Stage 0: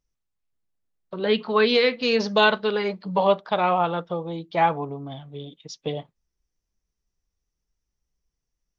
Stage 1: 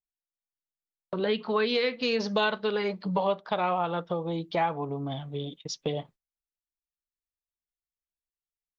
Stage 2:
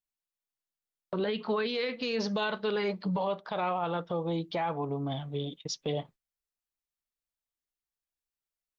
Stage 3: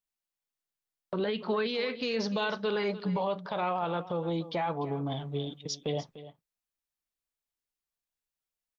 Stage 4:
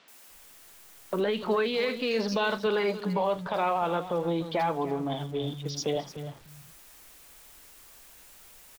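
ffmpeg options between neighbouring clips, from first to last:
-af "agate=range=-29dB:threshold=-49dB:ratio=16:detection=peak,acompressor=threshold=-32dB:ratio=2.5,volume=3.5dB"
-af "alimiter=limit=-22.5dB:level=0:latency=1:release=12"
-af "aecho=1:1:297:0.178"
-filter_complex "[0:a]aeval=exprs='val(0)+0.5*0.00447*sgn(val(0))':c=same,acrossover=split=160|4500[a][b][c];[c]adelay=80[d];[a]adelay=300[e];[e][b][d]amix=inputs=3:normalize=0,volume=3.5dB"

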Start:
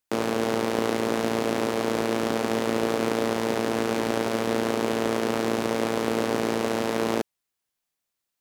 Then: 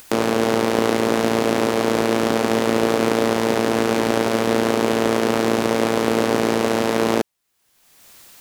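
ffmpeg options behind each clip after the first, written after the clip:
-af "acompressor=mode=upward:threshold=-28dB:ratio=2.5,volume=6.5dB"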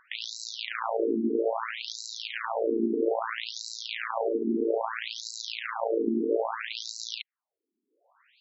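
-af "adynamicsmooth=sensitivity=6:basefreq=3.3k,acrusher=bits=2:mode=log:mix=0:aa=0.000001,afftfilt=real='re*between(b*sr/1024,290*pow(5500/290,0.5+0.5*sin(2*PI*0.61*pts/sr))/1.41,290*pow(5500/290,0.5+0.5*sin(2*PI*0.61*pts/sr))*1.41)':imag='im*between(b*sr/1024,290*pow(5500/290,0.5+0.5*sin(2*PI*0.61*pts/sr))/1.41,290*pow(5500/290,0.5+0.5*sin(2*PI*0.61*pts/sr))*1.41)':win_size=1024:overlap=0.75,volume=-4dB"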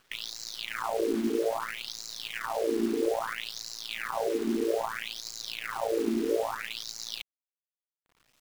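-af "acrusher=bits=7:dc=4:mix=0:aa=0.000001,volume=-1.5dB"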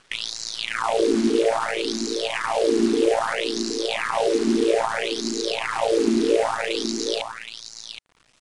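-af "aecho=1:1:770:0.398,aresample=22050,aresample=44100,volume=8.5dB"

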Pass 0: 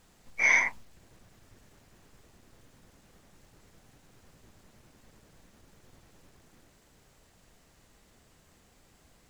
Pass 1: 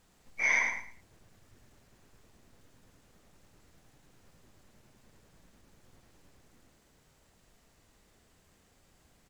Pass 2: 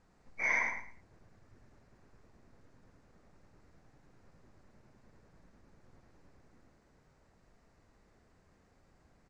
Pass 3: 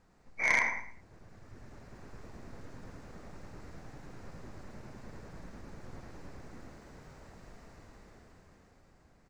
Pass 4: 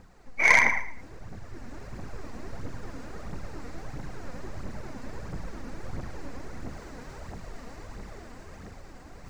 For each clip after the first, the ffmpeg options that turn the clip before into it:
-af "aecho=1:1:109|218|327:0.501|0.115|0.0265,volume=-4.5dB"
-af "lowpass=4.2k,equalizer=f=3.2k:t=o:w=0.77:g=-11.5"
-af "dynaudnorm=f=250:g=13:m=13dB,aeval=exprs='0.119*(cos(1*acos(clip(val(0)/0.119,-1,1)))-cos(1*PI/2))+0.0266*(cos(3*acos(clip(val(0)/0.119,-1,1)))-cos(3*PI/2))+0.00531*(cos(5*acos(clip(val(0)/0.119,-1,1)))-cos(5*PI/2))':c=same,volume=7dB"
-af "areverse,acompressor=mode=upward:threshold=-46dB:ratio=2.5,areverse,aphaser=in_gain=1:out_gain=1:delay=4.3:decay=0.5:speed=1.5:type=triangular,volume=7.5dB"

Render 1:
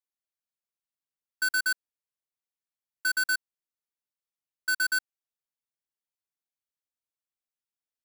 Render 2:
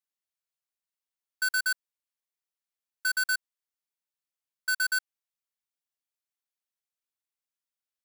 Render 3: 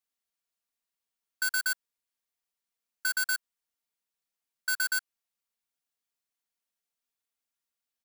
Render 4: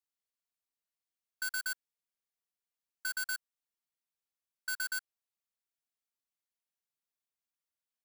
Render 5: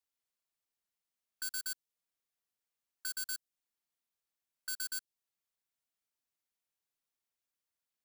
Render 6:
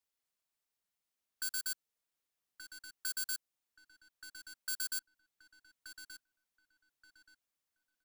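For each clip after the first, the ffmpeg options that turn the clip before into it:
-af "lowshelf=f=440:g=-10.5"
-af "aecho=1:1:4.3:0.45,volume=2dB"
-af "aeval=exprs='0.1*(cos(1*acos(clip(val(0)/0.1,-1,1)))-cos(1*PI/2))+0.00355*(cos(2*acos(clip(val(0)/0.1,-1,1)))-cos(2*PI/2))':c=same,volume=-7dB"
-filter_complex "[0:a]acrossover=split=480|3000[a][b][c];[b]acompressor=threshold=-51dB:ratio=6[d];[a][d][c]amix=inputs=3:normalize=0,volume=1dB"
-filter_complex "[0:a]asplit=2[a][b];[b]adelay=1178,lowpass=f=3.1k:p=1,volume=-7dB,asplit=2[c][d];[d]adelay=1178,lowpass=f=3.1k:p=1,volume=0.31,asplit=2[e][f];[f]adelay=1178,lowpass=f=3.1k:p=1,volume=0.31,asplit=2[g][h];[h]adelay=1178,lowpass=f=3.1k:p=1,volume=0.31[i];[a][c][e][g][i]amix=inputs=5:normalize=0,volume=1dB"

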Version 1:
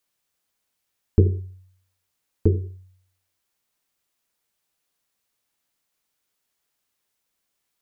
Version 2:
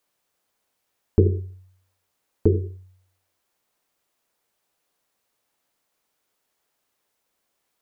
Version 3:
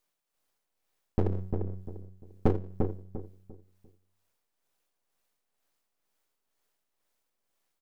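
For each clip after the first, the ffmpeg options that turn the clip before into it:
-filter_complex "[0:a]equalizer=f=590:t=o:w=2.7:g=7.5,asplit=2[a][b];[b]alimiter=limit=-12dB:level=0:latency=1:release=88,volume=2dB[c];[a][c]amix=inputs=2:normalize=0,volume=-6.5dB"
-filter_complex "[0:a]aeval=exprs='max(val(0),0)':c=same,tremolo=f=2.1:d=0.56,asplit=2[a][b];[b]adelay=347,lowpass=f=950:p=1,volume=-4dB,asplit=2[c][d];[d]adelay=347,lowpass=f=950:p=1,volume=0.31,asplit=2[e][f];[f]adelay=347,lowpass=f=950:p=1,volume=0.31,asplit=2[g][h];[h]adelay=347,lowpass=f=950:p=1,volume=0.31[i];[c][e][g][i]amix=inputs=4:normalize=0[j];[a][j]amix=inputs=2:normalize=0"

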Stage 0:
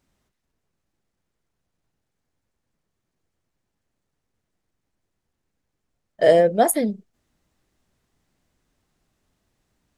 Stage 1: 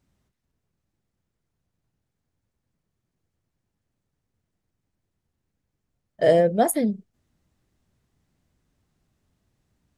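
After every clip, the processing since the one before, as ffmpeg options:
-af "equalizer=f=100:w=0.49:g=8.5,volume=-4dB"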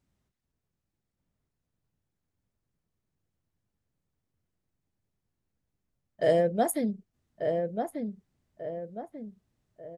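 -filter_complex "[0:a]asplit=2[a][b];[b]adelay=1190,lowpass=f=1.7k:p=1,volume=-5dB,asplit=2[c][d];[d]adelay=1190,lowpass=f=1.7k:p=1,volume=0.42,asplit=2[e][f];[f]adelay=1190,lowpass=f=1.7k:p=1,volume=0.42,asplit=2[g][h];[h]adelay=1190,lowpass=f=1.7k:p=1,volume=0.42,asplit=2[i][j];[j]adelay=1190,lowpass=f=1.7k:p=1,volume=0.42[k];[a][c][e][g][i][k]amix=inputs=6:normalize=0,volume=-6dB"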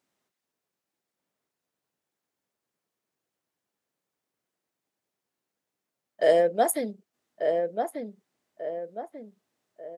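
-af "highpass=390,volume=4.5dB"

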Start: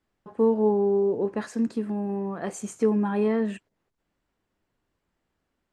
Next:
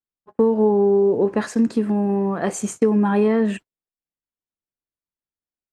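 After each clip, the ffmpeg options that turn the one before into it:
-af "acompressor=threshold=-22dB:ratio=6,agate=range=-33dB:threshold=-41dB:ratio=16:detection=peak,volume=9dB"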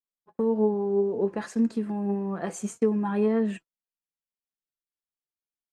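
-af "flanger=delay=4.3:depth=1.7:regen=49:speed=1.8:shape=sinusoidal,volume=-5dB"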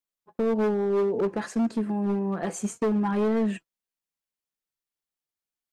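-af "asoftclip=type=hard:threshold=-23dB,volume=2.5dB"

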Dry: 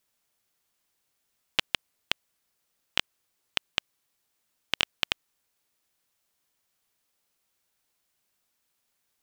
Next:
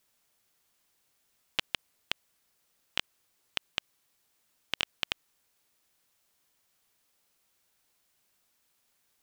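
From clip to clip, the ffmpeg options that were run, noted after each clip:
-af "alimiter=level_in=10.5dB:limit=-1dB:release=50:level=0:latency=1,volume=-7dB"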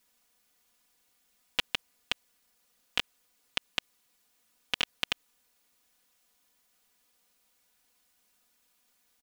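-af "aecho=1:1:4.1:0.76"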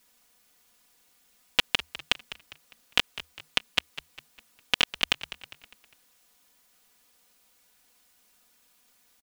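-filter_complex "[0:a]asplit=5[a][b][c][d][e];[b]adelay=202,afreqshift=-79,volume=-15dB[f];[c]adelay=404,afreqshift=-158,volume=-22.5dB[g];[d]adelay=606,afreqshift=-237,volume=-30.1dB[h];[e]adelay=808,afreqshift=-316,volume=-37.6dB[i];[a][f][g][h][i]amix=inputs=5:normalize=0,volume=6.5dB"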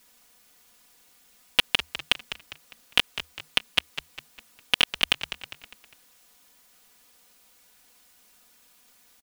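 -af "acontrast=62,volume=-1dB"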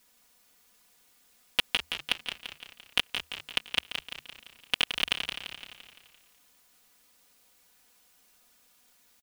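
-af "aecho=1:1:171|342|513|684|855|1026:0.422|0.223|0.118|0.0628|0.0333|0.0176,volume=-5.5dB"

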